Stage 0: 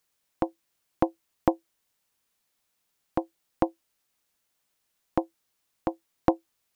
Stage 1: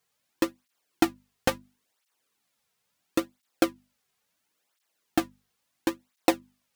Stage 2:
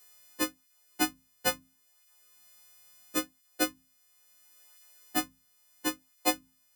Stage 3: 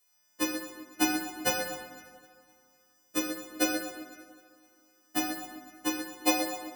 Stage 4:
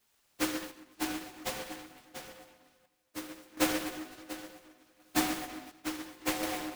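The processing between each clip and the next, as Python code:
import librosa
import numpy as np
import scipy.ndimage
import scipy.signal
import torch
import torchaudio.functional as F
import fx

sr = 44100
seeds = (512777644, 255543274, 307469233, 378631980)

y1 = fx.halfwave_hold(x, sr)
y1 = fx.hum_notches(y1, sr, base_hz=50, count=5)
y1 = fx.flanger_cancel(y1, sr, hz=0.73, depth_ms=3.6)
y2 = fx.freq_snap(y1, sr, grid_st=3)
y2 = fx.band_squash(y2, sr, depth_pct=40)
y2 = F.gain(torch.from_numpy(y2), -5.0).numpy()
y3 = fx.echo_feedback(y2, sr, ms=256, feedback_pct=54, wet_db=-14)
y3 = fx.rev_plate(y3, sr, seeds[0], rt60_s=2.3, hf_ratio=0.6, predelay_ms=0, drr_db=-3.5)
y3 = fx.upward_expand(y3, sr, threshold_db=-45.0, expansion=1.5)
y4 = y3 + 10.0 ** (-12.5 / 20.0) * np.pad(y3, (int(691 * sr / 1000.0), 0))[:len(y3)]
y4 = fx.tremolo_random(y4, sr, seeds[1], hz=1.4, depth_pct=75)
y4 = fx.noise_mod_delay(y4, sr, seeds[2], noise_hz=1300.0, depth_ms=0.15)
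y4 = F.gain(torch.from_numpy(y4), 1.5).numpy()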